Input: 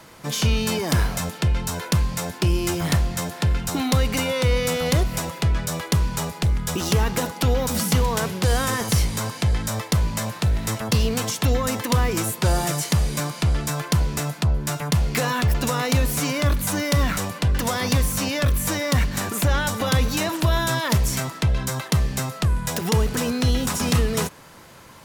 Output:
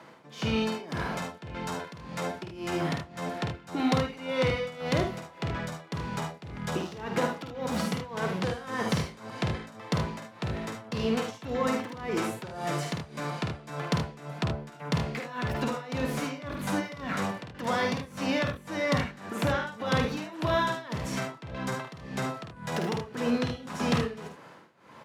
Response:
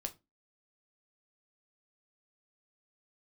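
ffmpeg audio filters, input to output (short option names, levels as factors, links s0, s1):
-filter_complex "[0:a]highpass=180,aemphasis=mode=reproduction:type=50fm,asplit=2[s0][s1];[s1]adynamicsmooth=sensitivity=2:basefreq=4300,volume=0.794[s2];[s0][s2]amix=inputs=2:normalize=0,tremolo=f=1.8:d=0.89,aecho=1:1:50|76:0.531|0.398,volume=0.447"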